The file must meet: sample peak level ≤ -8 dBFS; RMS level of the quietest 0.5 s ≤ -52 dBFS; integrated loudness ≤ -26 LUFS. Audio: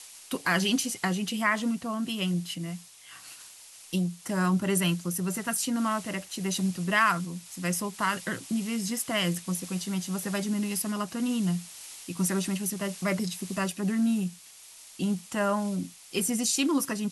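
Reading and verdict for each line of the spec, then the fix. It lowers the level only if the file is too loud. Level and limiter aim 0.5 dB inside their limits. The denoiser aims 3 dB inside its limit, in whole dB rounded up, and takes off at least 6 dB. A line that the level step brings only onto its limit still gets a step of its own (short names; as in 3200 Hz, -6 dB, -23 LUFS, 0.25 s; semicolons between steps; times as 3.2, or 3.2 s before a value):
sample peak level -11.5 dBFS: OK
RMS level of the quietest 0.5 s -50 dBFS: fail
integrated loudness -29.0 LUFS: OK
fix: denoiser 6 dB, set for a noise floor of -50 dBFS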